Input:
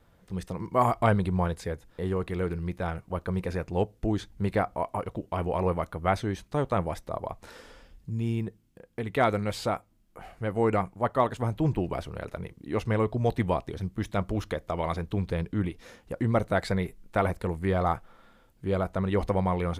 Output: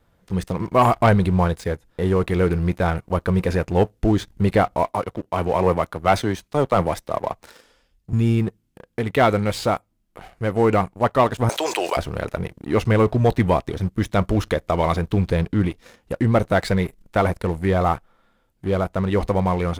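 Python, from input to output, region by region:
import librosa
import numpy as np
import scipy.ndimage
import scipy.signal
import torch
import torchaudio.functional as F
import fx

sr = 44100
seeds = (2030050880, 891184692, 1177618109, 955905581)

y = fx.chain(x, sr, fx.low_shelf(hz=170.0, db=-6.0),
    fx.band_widen(depth_pct=40), at=(4.91, 8.13))
y = fx.chain(y, sr, fx.highpass(hz=500.0, slope=24),
    fx.peak_eq(hz=6400.0, db=14.5, octaves=2.0),
    fx.env_flatten(amount_pct=70), at=(11.49, 11.97))
y = fx.rider(y, sr, range_db=5, speed_s=2.0)
y = fx.leveller(y, sr, passes=2)
y = y * 10.0 ** (1.0 / 20.0)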